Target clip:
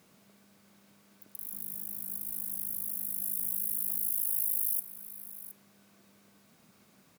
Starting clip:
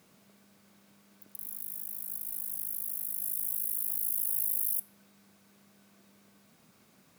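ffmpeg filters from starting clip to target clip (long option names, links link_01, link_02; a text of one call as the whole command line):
ffmpeg -i in.wav -filter_complex "[0:a]asettb=1/sr,asplit=3[link_01][link_02][link_03];[link_01]atrim=end=1.534[link_04];[link_02]atrim=start=1.53:end=4.08,asetpts=PTS-STARTPTS,afade=type=in:duration=0.004:curve=qsin,afade=type=out:start_time=2.546:duration=0.004:curve=qsin,lowshelf=frequency=420:gain=11[link_05];[link_03]atrim=start=4.076[link_06];[link_04][link_05]acrossfade=duration=0.004:curve1=hsin:curve2=qsin[link_07];[link_07][link_06]acrossfade=duration=0.004:curve1=qsin:curve2=hsin,aecho=1:1:718:0.178" out.wav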